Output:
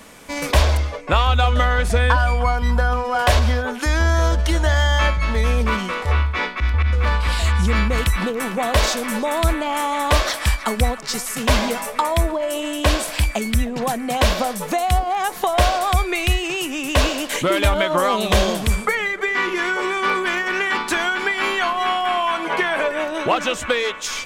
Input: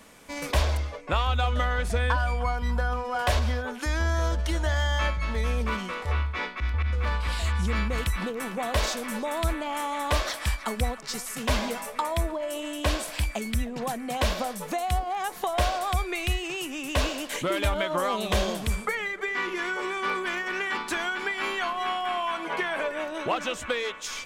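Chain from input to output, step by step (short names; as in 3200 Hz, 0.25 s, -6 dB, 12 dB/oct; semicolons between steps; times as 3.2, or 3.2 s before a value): gain +8.5 dB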